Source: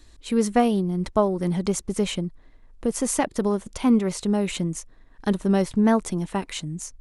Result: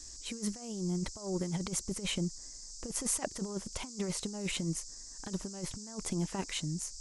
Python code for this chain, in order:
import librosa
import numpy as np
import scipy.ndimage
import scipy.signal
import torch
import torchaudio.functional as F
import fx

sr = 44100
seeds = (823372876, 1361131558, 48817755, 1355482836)

y = fx.over_compress(x, sr, threshold_db=-26.0, ratio=-0.5)
y = fx.dmg_noise_band(y, sr, seeds[0], low_hz=4800.0, high_hz=7900.0, level_db=-40.0)
y = F.gain(torch.from_numpy(y), -9.0).numpy()